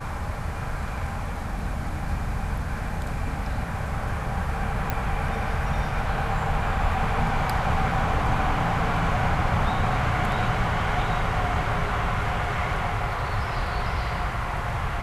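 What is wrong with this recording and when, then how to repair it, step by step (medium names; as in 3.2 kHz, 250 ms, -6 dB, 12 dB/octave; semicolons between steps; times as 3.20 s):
4.90 s: pop -12 dBFS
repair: de-click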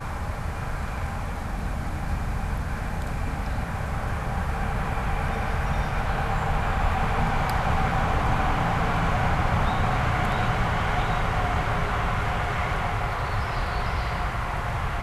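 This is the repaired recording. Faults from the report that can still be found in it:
nothing left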